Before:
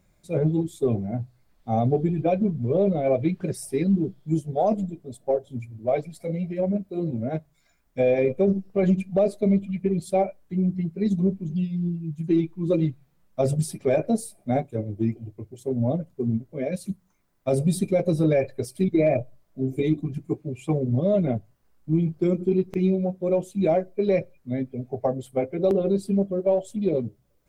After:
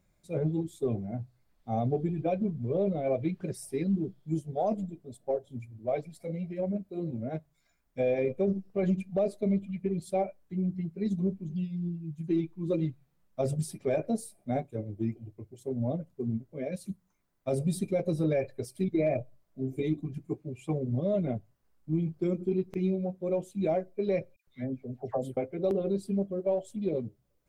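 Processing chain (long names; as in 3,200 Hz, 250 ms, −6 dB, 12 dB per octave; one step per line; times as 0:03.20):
0:24.36–0:25.37: all-pass dispersion lows, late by 113 ms, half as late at 1,600 Hz
level −7 dB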